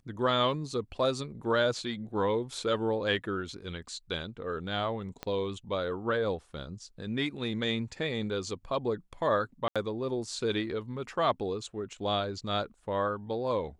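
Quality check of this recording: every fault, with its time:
5.23 s: pop -21 dBFS
9.68–9.76 s: dropout 76 ms

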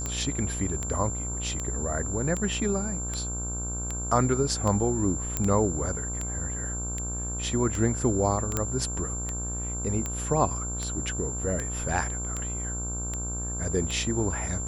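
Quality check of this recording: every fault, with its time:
buzz 60 Hz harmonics 26 -34 dBFS
tick 78 rpm -17 dBFS
whine 7.3 kHz -33 dBFS
5.37 s: pop -11 dBFS
8.57 s: pop -11 dBFS

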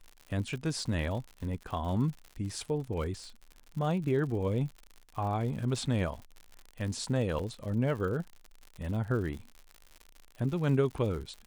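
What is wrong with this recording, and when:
crackle 98 per s -39 dBFS
7.39 s: dropout 3.6 ms

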